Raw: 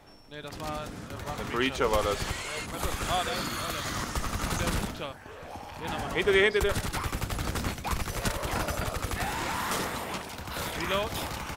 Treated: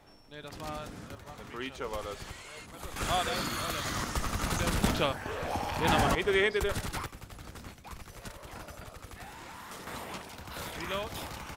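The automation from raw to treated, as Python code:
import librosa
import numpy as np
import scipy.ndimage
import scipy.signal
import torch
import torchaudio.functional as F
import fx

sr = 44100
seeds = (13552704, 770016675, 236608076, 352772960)

y = fx.gain(x, sr, db=fx.steps((0.0, -4.0), (1.15, -11.0), (2.96, -1.0), (4.84, 8.0), (6.15, -4.0), (7.06, -14.5), (9.87, -6.0)))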